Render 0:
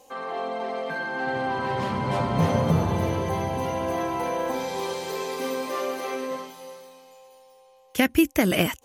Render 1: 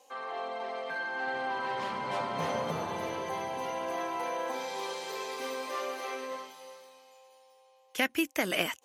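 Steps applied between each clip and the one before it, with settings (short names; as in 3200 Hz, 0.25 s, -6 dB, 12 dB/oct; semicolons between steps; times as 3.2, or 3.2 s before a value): weighting filter A; gain -5 dB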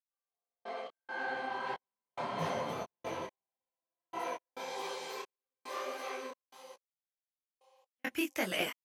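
step gate "...x.xxx..xxx.x." 69 bpm -60 dB; detuned doubles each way 57 cents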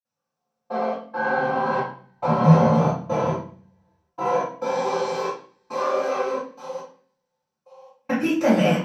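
in parallel at -2.5 dB: compressor, threshold -44 dBFS, peak gain reduction 14.5 dB; on the sum: reverb RT60 0.45 s, pre-delay 46 ms; gain +3.5 dB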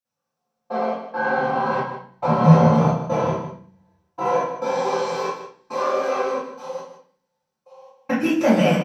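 echo 0.154 s -11.5 dB; gain +1.5 dB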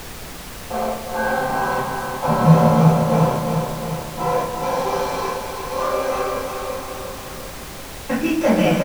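feedback echo 0.353 s, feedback 57%, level -6 dB; added noise pink -34 dBFS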